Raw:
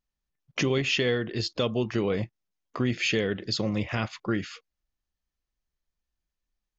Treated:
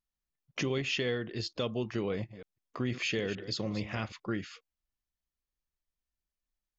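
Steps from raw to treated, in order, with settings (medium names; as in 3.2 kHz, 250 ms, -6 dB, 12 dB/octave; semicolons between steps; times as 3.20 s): 2.12–4.13 s: chunks repeated in reverse 154 ms, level -12.5 dB; trim -6.5 dB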